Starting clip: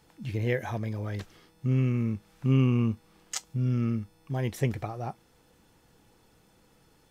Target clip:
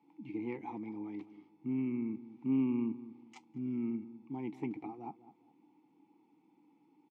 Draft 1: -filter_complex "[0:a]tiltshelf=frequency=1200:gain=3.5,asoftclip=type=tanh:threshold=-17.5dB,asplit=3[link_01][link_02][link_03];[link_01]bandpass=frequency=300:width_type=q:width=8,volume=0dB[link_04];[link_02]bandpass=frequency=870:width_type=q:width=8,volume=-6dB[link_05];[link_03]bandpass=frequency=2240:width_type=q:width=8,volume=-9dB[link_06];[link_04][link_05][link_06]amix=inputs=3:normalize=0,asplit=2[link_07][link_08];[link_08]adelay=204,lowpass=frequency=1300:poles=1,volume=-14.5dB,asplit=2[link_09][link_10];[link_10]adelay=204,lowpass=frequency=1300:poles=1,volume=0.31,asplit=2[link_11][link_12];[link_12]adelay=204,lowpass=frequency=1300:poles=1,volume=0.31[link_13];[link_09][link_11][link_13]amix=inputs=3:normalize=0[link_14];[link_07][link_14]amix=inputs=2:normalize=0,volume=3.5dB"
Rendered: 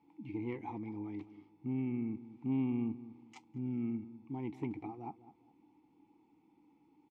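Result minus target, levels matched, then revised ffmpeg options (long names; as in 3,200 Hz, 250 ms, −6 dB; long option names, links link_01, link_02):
125 Hz band +6.0 dB
-filter_complex "[0:a]highpass=frequency=140:width=0.5412,highpass=frequency=140:width=1.3066,tiltshelf=frequency=1200:gain=3.5,asoftclip=type=tanh:threshold=-17.5dB,asplit=3[link_01][link_02][link_03];[link_01]bandpass=frequency=300:width_type=q:width=8,volume=0dB[link_04];[link_02]bandpass=frequency=870:width_type=q:width=8,volume=-6dB[link_05];[link_03]bandpass=frequency=2240:width_type=q:width=8,volume=-9dB[link_06];[link_04][link_05][link_06]amix=inputs=3:normalize=0,asplit=2[link_07][link_08];[link_08]adelay=204,lowpass=frequency=1300:poles=1,volume=-14.5dB,asplit=2[link_09][link_10];[link_10]adelay=204,lowpass=frequency=1300:poles=1,volume=0.31,asplit=2[link_11][link_12];[link_12]adelay=204,lowpass=frequency=1300:poles=1,volume=0.31[link_13];[link_09][link_11][link_13]amix=inputs=3:normalize=0[link_14];[link_07][link_14]amix=inputs=2:normalize=0,volume=3.5dB"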